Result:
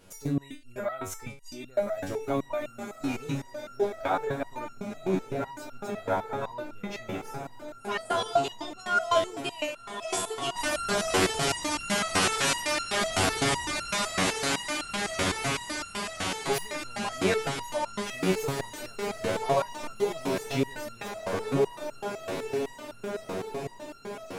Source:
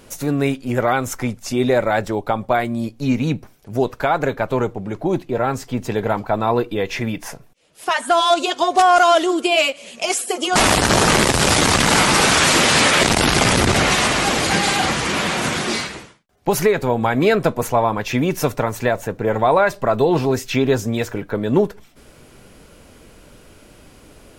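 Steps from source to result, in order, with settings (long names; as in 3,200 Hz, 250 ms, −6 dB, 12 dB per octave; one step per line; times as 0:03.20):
feedback delay with all-pass diffusion 1,987 ms, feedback 58%, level −5.5 dB
step-sequenced resonator 7.9 Hz 94–1,400 Hz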